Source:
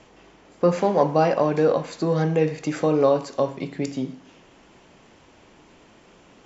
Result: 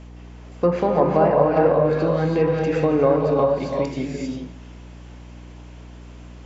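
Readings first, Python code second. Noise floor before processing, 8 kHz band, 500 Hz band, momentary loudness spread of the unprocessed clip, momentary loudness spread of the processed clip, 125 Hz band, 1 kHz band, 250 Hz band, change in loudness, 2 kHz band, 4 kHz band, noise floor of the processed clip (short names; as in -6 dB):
-53 dBFS, n/a, +3.0 dB, 9 LU, 11 LU, +2.5 dB, +2.5 dB, +2.0 dB, +2.5 dB, +2.0 dB, -1.5 dB, -41 dBFS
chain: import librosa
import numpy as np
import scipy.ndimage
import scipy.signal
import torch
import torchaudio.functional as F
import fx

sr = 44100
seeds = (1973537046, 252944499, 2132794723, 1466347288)

y = fx.rev_gated(x, sr, seeds[0], gate_ms=430, shape='rising', drr_db=0.0)
y = fx.add_hum(y, sr, base_hz=60, snr_db=19)
y = fx.env_lowpass_down(y, sr, base_hz=1800.0, full_db=-13.0)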